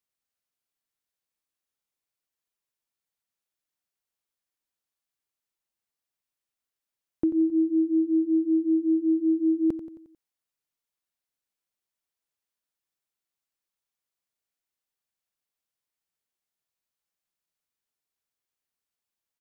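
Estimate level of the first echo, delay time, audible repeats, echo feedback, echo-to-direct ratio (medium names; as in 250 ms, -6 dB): -13.0 dB, 89 ms, 4, 52%, -11.5 dB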